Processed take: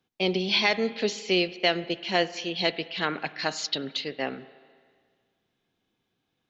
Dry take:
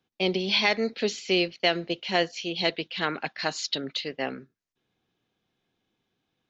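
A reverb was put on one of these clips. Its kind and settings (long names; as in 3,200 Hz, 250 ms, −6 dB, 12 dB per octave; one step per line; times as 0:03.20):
spring reverb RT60 1.8 s, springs 33/49 ms, chirp 60 ms, DRR 15.5 dB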